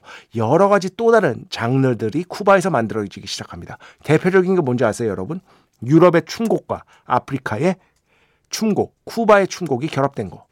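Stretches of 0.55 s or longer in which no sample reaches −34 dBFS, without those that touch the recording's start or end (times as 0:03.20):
0:07.74–0:08.51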